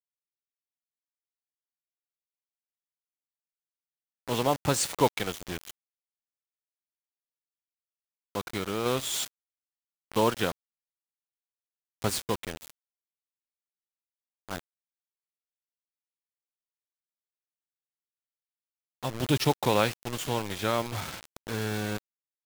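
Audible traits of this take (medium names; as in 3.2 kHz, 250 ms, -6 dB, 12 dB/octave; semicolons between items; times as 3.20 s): a quantiser's noise floor 6-bit, dither none; random-step tremolo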